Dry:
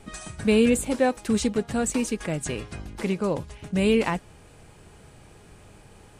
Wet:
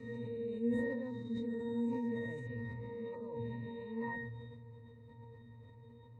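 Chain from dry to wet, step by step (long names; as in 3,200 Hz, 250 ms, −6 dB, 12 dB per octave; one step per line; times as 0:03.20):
peak hold with a rise ahead of every peak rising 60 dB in 1.65 s
reversed playback
downward compressor 10 to 1, threshold −29 dBFS, peak gain reduction 15.5 dB
reversed playback
resonances in every octave A#, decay 0.42 s
level that may fall only so fast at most 26 dB per second
level +5 dB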